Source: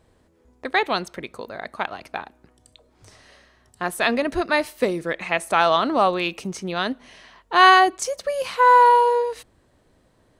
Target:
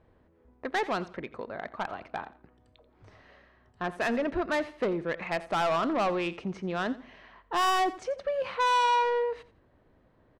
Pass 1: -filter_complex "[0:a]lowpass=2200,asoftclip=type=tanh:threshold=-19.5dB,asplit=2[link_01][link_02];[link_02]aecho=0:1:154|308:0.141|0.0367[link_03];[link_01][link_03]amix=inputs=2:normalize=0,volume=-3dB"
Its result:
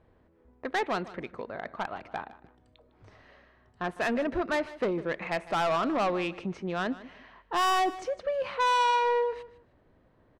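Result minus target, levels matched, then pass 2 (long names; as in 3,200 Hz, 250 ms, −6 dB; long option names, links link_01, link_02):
echo 68 ms late
-filter_complex "[0:a]lowpass=2200,asoftclip=type=tanh:threshold=-19.5dB,asplit=2[link_01][link_02];[link_02]aecho=0:1:86|172:0.141|0.0367[link_03];[link_01][link_03]amix=inputs=2:normalize=0,volume=-3dB"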